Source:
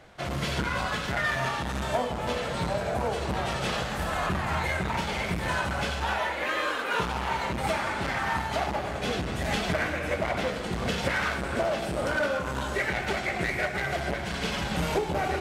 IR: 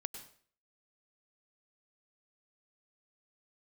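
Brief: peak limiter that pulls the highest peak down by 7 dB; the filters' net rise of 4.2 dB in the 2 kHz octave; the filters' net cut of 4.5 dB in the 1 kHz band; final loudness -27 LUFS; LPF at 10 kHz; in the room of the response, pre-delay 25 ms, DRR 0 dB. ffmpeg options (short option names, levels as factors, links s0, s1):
-filter_complex "[0:a]lowpass=10000,equalizer=f=1000:t=o:g=-8.5,equalizer=f=2000:t=o:g=8,alimiter=limit=0.106:level=0:latency=1,asplit=2[s0][s1];[1:a]atrim=start_sample=2205,adelay=25[s2];[s1][s2]afir=irnorm=-1:irlink=0,volume=1.19[s3];[s0][s3]amix=inputs=2:normalize=0,volume=0.891"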